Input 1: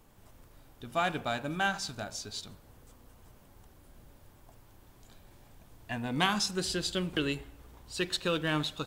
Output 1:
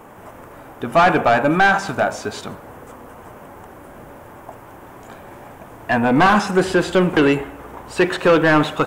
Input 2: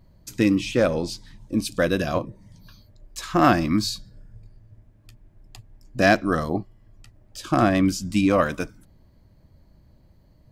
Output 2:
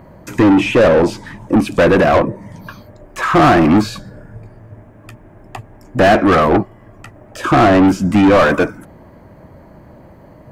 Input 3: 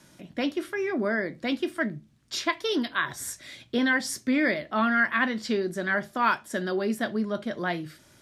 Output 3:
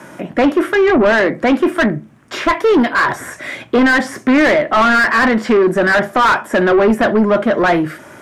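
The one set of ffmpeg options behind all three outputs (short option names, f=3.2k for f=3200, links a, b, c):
-filter_complex "[0:a]equalizer=f=4.2k:t=o:w=1.2:g=-15,acrossover=split=3500[a][b];[b]acompressor=threshold=-49dB:ratio=4:attack=1:release=60[c];[a][c]amix=inputs=2:normalize=0,asplit=2[d][e];[e]highpass=f=720:p=1,volume=32dB,asoftclip=type=tanh:threshold=-5dB[f];[d][f]amix=inputs=2:normalize=0,lowpass=f=1.6k:p=1,volume=-6dB,volume=3dB"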